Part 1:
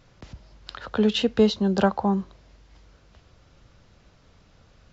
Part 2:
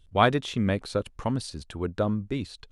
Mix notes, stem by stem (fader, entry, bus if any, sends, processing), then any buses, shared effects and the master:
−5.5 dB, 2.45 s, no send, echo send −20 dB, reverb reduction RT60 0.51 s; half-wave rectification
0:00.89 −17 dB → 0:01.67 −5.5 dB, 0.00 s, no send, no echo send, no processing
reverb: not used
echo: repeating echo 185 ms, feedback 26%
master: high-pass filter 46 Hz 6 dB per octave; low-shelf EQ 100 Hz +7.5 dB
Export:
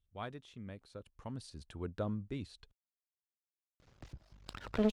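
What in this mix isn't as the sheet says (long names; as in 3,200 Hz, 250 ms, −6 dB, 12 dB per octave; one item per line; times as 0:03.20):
stem 1: entry 2.45 s → 3.80 s
stem 2 −17.0 dB → −23.5 dB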